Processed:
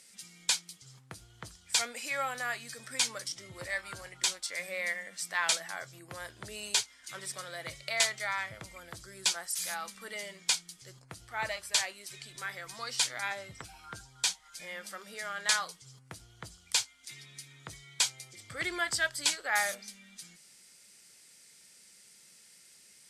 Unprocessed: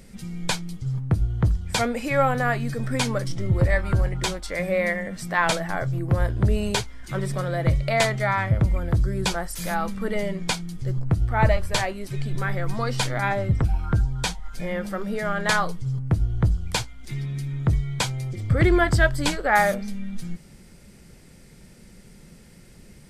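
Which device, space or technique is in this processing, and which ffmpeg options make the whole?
piezo pickup straight into a mixer: -af "lowpass=8300,aderivative,volume=4.5dB"

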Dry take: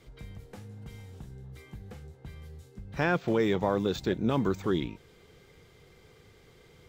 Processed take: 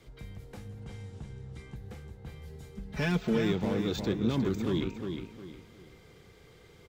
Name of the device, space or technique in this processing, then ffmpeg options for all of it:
one-band saturation: -filter_complex "[0:a]acrossover=split=370|2200[link_01][link_02][link_03];[link_02]asoftclip=type=tanh:threshold=-39dB[link_04];[link_01][link_04][link_03]amix=inputs=3:normalize=0,asettb=1/sr,asplit=3[link_05][link_06][link_07];[link_05]atrim=end=0.804[link_08];[link_06]atrim=start=0.8:end=1.76,asetpts=PTS-STARTPTS,afade=type=in:duration=0.004:curve=qsin,afade=type=out:start_time=0.956:duration=0.004:curve=qsin,lowpass=frequency=9700:width=0.5412,lowpass=frequency=9700:width=1.3066[link_09];[link_07]atrim=start=1.756[link_10];[link_08][link_09]acrossfade=duration=0.004:curve1=hsin:curve2=qsin[link_11];[link_11][link_10]acrossfade=duration=0.004:curve1=qsin:curve2=hsin,asettb=1/sr,asplit=3[link_12][link_13][link_14];[link_12]atrim=end=2.474[link_15];[link_13]atrim=start=2.47:end=3.38,asetpts=PTS-STARTPTS,afade=type=in:duration=0.004:curve=qsin,afade=type=out:start_time=0.906:duration=0.004:curve=qsin,aecho=1:1:4.7:0.96,atrim=end_sample=40131[link_16];[link_14]atrim=start=3.376[link_17];[link_15][link_16]acrossfade=duration=0.004:curve1=hsin:curve2=qsin[link_18];[link_18][link_17]acrossfade=duration=0.004:curve1=qsin:curve2=hsin,asplit=2[link_19][link_20];[link_20]adelay=358,lowpass=frequency=5000:poles=1,volume=-6dB,asplit=2[link_21][link_22];[link_22]adelay=358,lowpass=frequency=5000:poles=1,volume=0.33,asplit=2[link_23][link_24];[link_24]adelay=358,lowpass=frequency=5000:poles=1,volume=0.33,asplit=2[link_25][link_26];[link_26]adelay=358,lowpass=frequency=5000:poles=1,volume=0.33[link_27];[link_19][link_21][link_23][link_25][link_27]amix=inputs=5:normalize=0"

